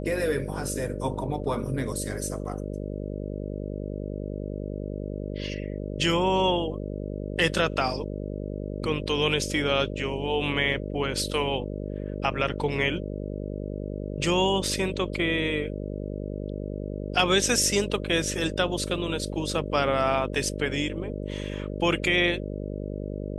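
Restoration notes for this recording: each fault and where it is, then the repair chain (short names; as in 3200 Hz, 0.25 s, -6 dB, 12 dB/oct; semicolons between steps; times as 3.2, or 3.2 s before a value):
buzz 50 Hz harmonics 12 -33 dBFS
14.67 gap 2.7 ms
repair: de-hum 50 Hz, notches 12; interpolate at 14.67, 2.7 ms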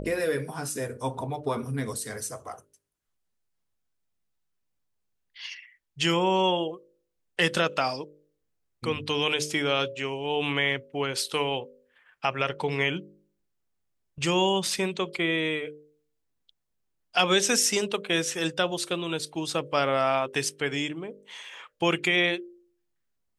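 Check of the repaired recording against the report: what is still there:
none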